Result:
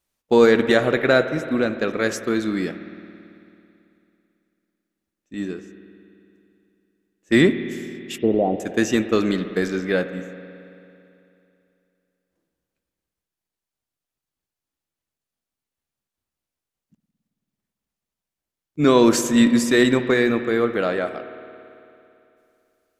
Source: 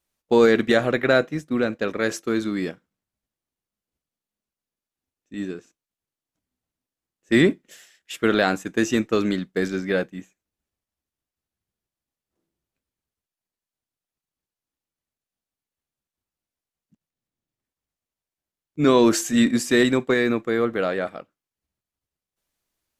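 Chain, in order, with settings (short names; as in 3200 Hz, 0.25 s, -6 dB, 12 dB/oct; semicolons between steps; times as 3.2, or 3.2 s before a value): 8.18–8.6 steep low-pass 830 Hz 48 dB/oct; spring tank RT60 2.8 s, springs 55 ms, chirp 65 ms, DRR 10 dB; gain +1.5 dB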